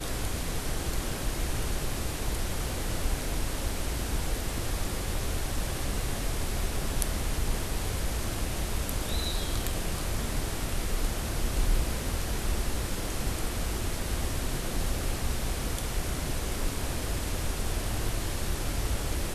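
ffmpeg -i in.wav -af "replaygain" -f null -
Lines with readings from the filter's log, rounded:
track_gain = +19.4 dB
track_peak = 0.348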